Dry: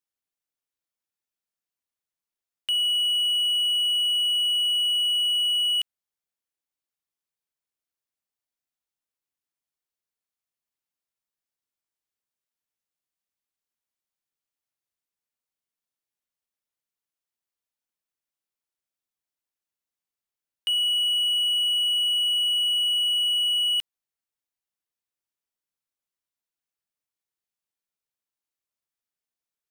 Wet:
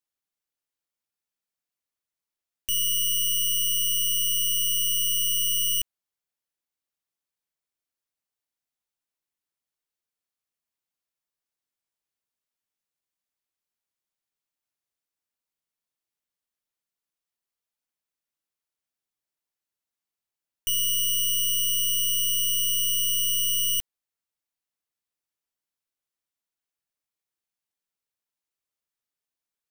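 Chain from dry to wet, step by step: tracing distortion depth 0.34 ms

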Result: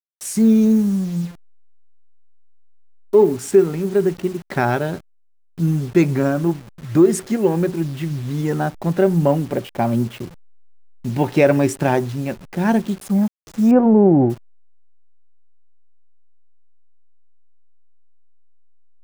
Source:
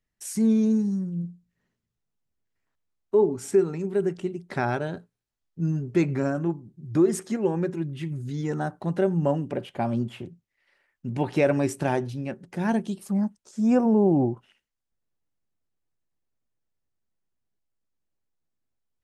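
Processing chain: level-crossing sampler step -42.5 dBFS; 13.71–14.3 LPF 1500 Hz 12 dB/oct; gain +7.5 dB

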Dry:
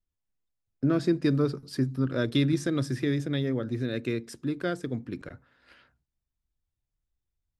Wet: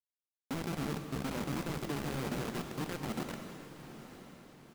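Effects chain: octaver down 1 oct, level +2 dB; resonant low shelf 130 Hz -9 dB, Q 3; notch 790 Hz, Q 12; transient shaper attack +2 dB, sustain -6 dB; limiter -33.5 dBFS, peak gain reduction 26 dB; running mean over 12 samples; tempo 1.6×; buzz 120 Hz, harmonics 7, -65 dBFS -1 dB/oct; companded quantiser 2-bit; on a send: diffused feedback echo 0.904 s, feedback 44%, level -12 dB; on the sum: non-linear reverb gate 0.36 s flat, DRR 6 dB; gain -6.5 dB

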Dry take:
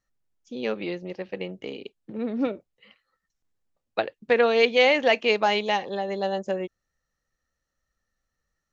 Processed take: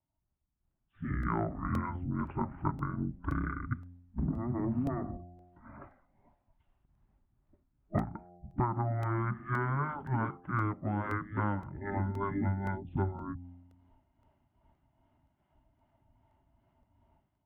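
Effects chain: spectral gate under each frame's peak -10 dB weak; Butterworth band-stop 940 Hz, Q 4.5; AGC gain up to 16 dB; LPF 2300 Hz 12 dB/oct; low shelf 300 Hz +9.5 dB; de-hum 177.5 Hz, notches 9; rotary speaker horn 5 Hz; compressor 10:1, threshold -29 dBFS, peak gain reduction 16 dB; speed mistake 15 ips tape played at 7.5 ips; crackling interface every 0.52 s, samples 64, repeat, from 0.71

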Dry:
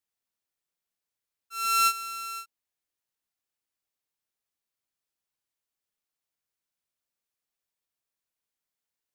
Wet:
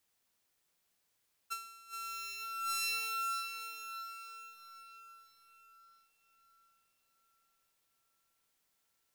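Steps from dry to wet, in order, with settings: diffused feedback echo 0.563 s, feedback 43%, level -12 dB; negative-ratio compressor -44 dBFS, ratio -1; gain +1 dB

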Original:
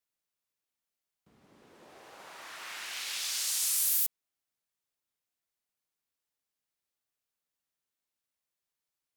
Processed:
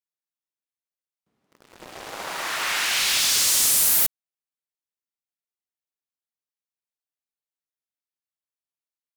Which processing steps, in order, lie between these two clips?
HPF 110 Hz 6 dB/oct; sample leveller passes 5

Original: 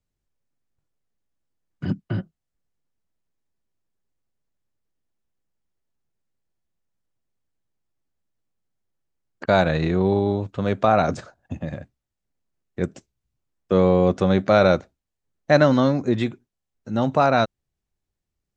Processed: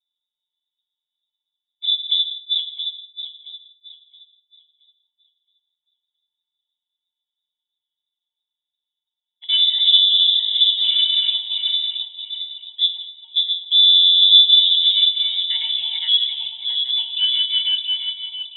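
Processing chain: regenerating reverse delay 0.336 s, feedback 55%, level -1 dB; octave resonator F, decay 0.18 s; treble ducked by the level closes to 640 Hz, closed at -21.5 dBFS; HPF 82 Hz 12 dB/oct; in parallel at -12 dB: soft clip -31.5 dBFS, distortion -7 dB; on the sum: bell 220 Hz +13 dB 0.41 oct; notch 1400 Hz, Q 6.7; non-linear reverb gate 0.23 s flat, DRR 12 dB; inverted band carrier 3700 Hz; dynamic EQ 1900 Hz, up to +4 dB, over -40 dBFS, Q 1.7; gain +6 dB

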